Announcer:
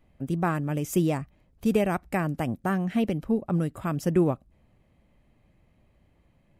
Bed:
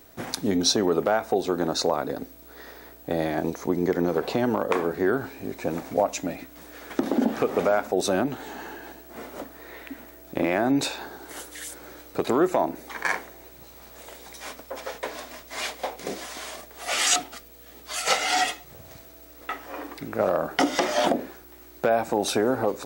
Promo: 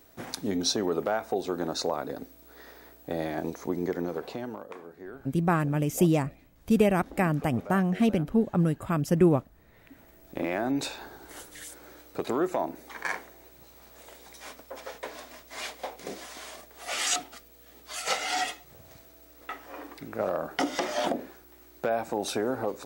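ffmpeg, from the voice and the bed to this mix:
-filter_complex "[0:a]adelay=5050,volume=1.19[s0];[1:a]volume=2.66,afade=t=out:st=3.78:d=0.96:silence=0.188365,afade=t=in:st=9.71:d=0.76:silence=0.199526[s1];[s0][s1]amix=inputs=2:normalize=0"

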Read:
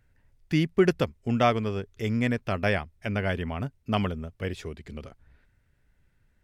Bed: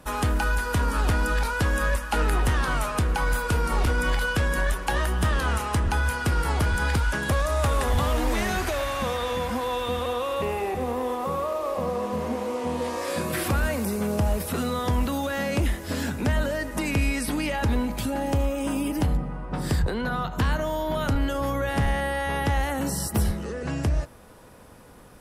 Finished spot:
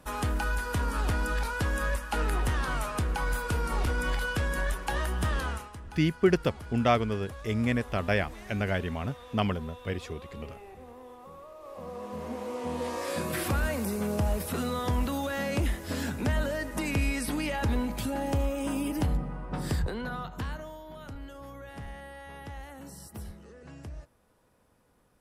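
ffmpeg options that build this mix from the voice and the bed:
-filter_complex "[0:a]adelay=5450,volume=0.841[s0];[1:a]volume=3.35,afade=t=out:st=5.39:d=0.32:silence=0.188365,afade=t=in:st=11.56:d=1.37:silence=0.158489,afade=t=out:st=19.54:d=1.28:silence=0.199526[s1];[s0][s1]amix=inputs=2:normalize=0"

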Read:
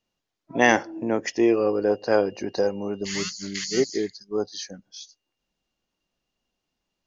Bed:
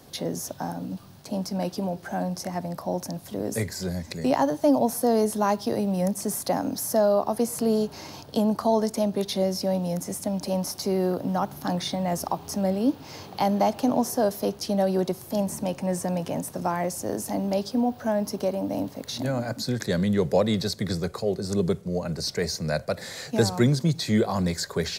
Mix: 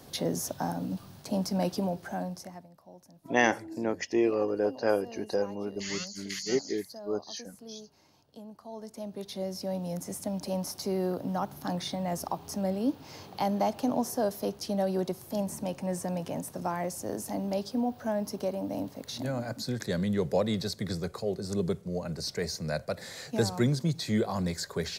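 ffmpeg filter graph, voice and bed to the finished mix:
-filter_complex "[0:a]adelay=2750,volume=0.501[s0];[1:a]volume=7.5,afade=t=out:st=1.72:d=0.96:silence=0.0707946,afade=t=in:st=8.65:d=1.49:silence=0.125893[s1];[s0][s1]amix=inputs=2:normalize=0"

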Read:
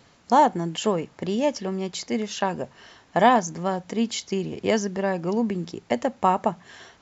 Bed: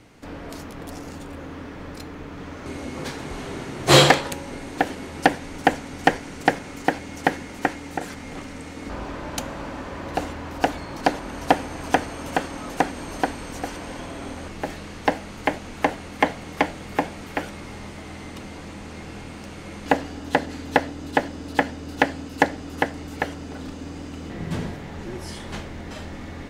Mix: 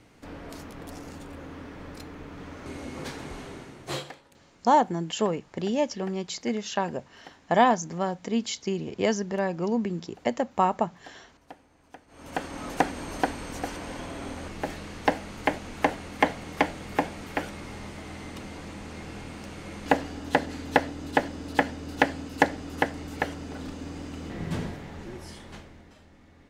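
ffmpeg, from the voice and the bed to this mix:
-filter_complex "[0:a]adelay=4350,volume=0.75[s0];[1:a]volume=11.2,afade=t=out:st=3.24:d=0.8:silence=0.0668344,afade=t=in:st=12.07:d=0.57:silence=0.0501187,afade=t=out:st=24.47:d=1.5:silence=0.141254[s1];[s0][s1]amix=inputs=2:normalize=0"

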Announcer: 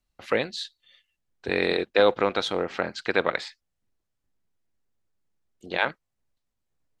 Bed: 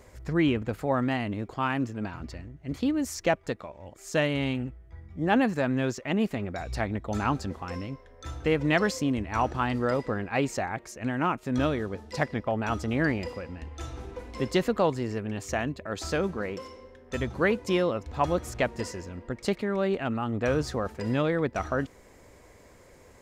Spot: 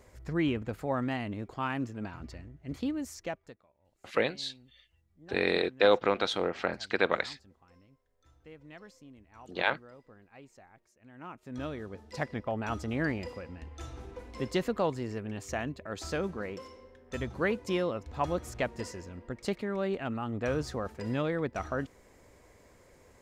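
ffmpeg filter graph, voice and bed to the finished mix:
-filter_complex "[0:a]adelay=3850,volume=0.668[s0];[1:a]volume=6.31,afade=t=out:st=2.77:d=0.85:silence=0.0891251,afade=t=in:st=11.07:d=1.35:silence=0.0891251[s1];[s0][s1]amix=inputs=2:normalize=0"

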